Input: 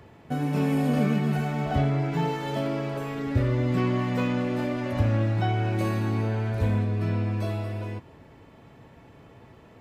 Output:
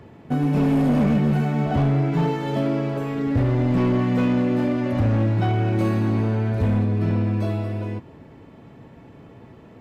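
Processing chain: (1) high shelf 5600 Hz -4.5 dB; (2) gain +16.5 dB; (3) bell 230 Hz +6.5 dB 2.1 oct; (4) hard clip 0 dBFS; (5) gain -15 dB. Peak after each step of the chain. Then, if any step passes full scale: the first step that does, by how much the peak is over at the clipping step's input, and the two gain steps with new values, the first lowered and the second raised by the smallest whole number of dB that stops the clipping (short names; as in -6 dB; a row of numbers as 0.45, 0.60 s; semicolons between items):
-11.5, +5.0, +8.5, 0.0, -15.0 dBFS; step 2, 8.5 dB; step 2 +7.5 dB, step 5 -6 dB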